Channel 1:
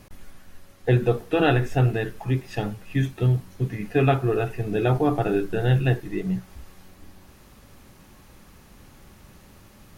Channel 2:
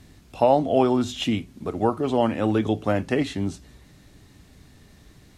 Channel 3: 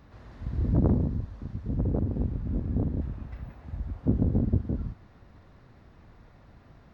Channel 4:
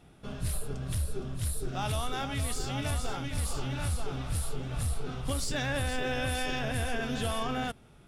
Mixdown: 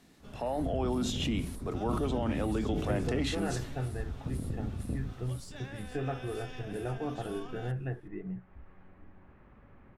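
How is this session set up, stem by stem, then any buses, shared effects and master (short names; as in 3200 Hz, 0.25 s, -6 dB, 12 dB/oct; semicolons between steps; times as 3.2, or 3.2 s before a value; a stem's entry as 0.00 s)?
-6.0 dB, 2.00 s, bus A, no send, dry
-7.5 dB, 0.00 s, bus B, no send, steep high-pass 160 Hz 48 dB/oct; sustainer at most 84 dB/s
+2.5 dB, 0.20 s, bus A, no send, gate -50 dBFS, range -10 dB; negative-ratio compressor -28 dBFS
-10.0 dB, 0.00 s, bus B, no send, compressor 4:1, threshold -33 dBFS, peak gain reduction 6 dB
bus A: 0.0 dB, LPF 2100 Hz 24 dB/oct; compressor 1.5:1, threshold -48 dBFS, peak gain reduction 10.5 dB
bus B: 0.0 dB, limiter -24 dBFS, peak gain reduction 10.5 dB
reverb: off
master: dry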